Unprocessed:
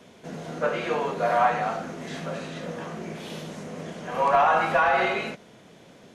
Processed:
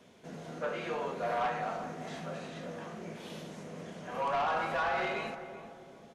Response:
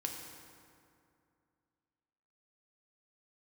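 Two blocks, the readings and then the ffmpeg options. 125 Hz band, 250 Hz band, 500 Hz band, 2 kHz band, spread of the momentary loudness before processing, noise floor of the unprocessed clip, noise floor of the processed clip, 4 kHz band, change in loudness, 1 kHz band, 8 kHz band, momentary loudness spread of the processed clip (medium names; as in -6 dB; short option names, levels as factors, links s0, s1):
-8.0 dB, -8.0 dB, -9.5 dB, -10.0 dB, 17 LU, -52 dBFS, -55 dBFS, -7.5 dB, -10.5 dB, -10.5 dB, -8.0 dB, 14 LU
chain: -filter_complex "[0:a]asoftclip=type=tanh:threshold=0.126,asplit=2[s0][s1];[s1]adelay=386,lowpass=f=960:p=1,volume=0.355,asplit=2[s2][s3];[s3]adelay=386,lowpass=f=960:p=1,volume=0.48,asplit=2[s4][s5];[s5]adelay=386,lowpass=f=960:p=1,volume=0.48,asplit=2[s6][s7];[s7]adelay=386,lowpass=f=960:p=1,volume=0.48,asplit=2[s8][s9];[s9]adelay=386,lowpass=f=960:p=1,volume=0.48[s10];[s2][s4][s6][s8][s10]amix=inputs=5:normalize=0[s11];[s0][s11]amix=inputs=2:normalize=0,volume=0.398"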